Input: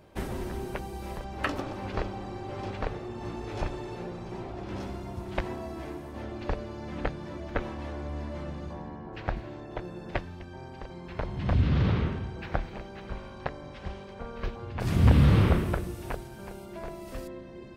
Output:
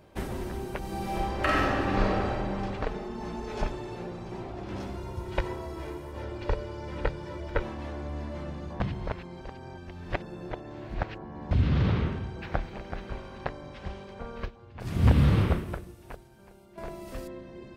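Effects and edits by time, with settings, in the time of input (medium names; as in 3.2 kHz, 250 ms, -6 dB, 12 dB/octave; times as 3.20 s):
0.78–2.30 s: reverb throw, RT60 2.4 s, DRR -6.5 dB
2.86–3.72 s: comb 4.7 ms
4.97–7.63 s: comb 2.1 ms, depth 59%
8.80–11.51 s: reverse
12.46–13.13 s: echo throw 380 ms, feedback 10%, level -8 dB
14.45–16.78 s: upward expansion, over -38 dBFS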